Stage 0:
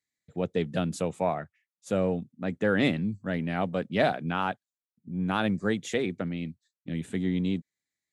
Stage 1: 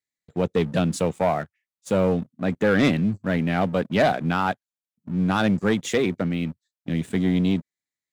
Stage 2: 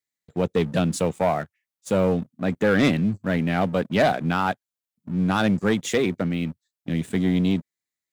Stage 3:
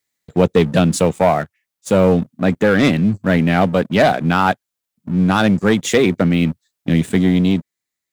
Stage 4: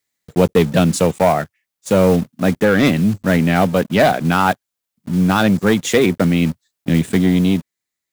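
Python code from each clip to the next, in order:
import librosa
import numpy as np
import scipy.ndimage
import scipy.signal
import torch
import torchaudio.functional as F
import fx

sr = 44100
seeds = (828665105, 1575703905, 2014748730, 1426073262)

y1 = fx.leveller(x, sr, passes=2)
y2 = fx.high_shelf(y1, sr, hz=8100.0, db=4.0)
y3 = fx.rider(y2, sr, range_db=4, speed_s=0.5)
y3 = y3 * librosa.db_to_amplitude(8.0)
y4 = fx.block_float(y3, sr, bits=5)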